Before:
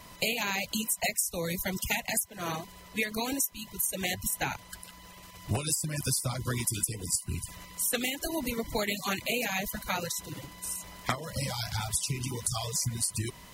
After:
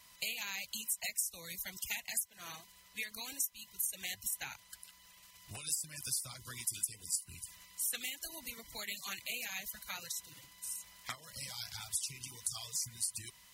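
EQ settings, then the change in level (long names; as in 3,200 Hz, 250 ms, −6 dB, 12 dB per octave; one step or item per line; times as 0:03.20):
guitar amp tone stack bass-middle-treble 5-5-5
low-shelf EQ 320 Hz −6 dB
0.0 dB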